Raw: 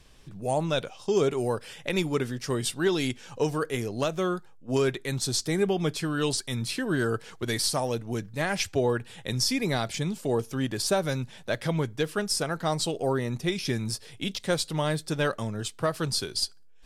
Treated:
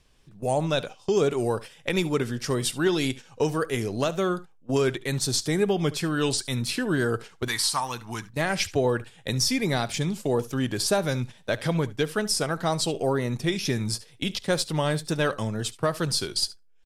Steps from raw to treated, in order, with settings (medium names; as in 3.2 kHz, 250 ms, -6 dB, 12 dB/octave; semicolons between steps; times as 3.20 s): gate -38 dBFS, range -13 dB; 7.48–8.30 s: resonant low shelf 740 Hz -9 dB, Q 3; in parallel at +0.5 dB: compression, threshold -37 dBFS, peak gain reduction 16.5 dB; on the sum: wow and flutter 53 cents; on a send: delay 71 ms -19 dB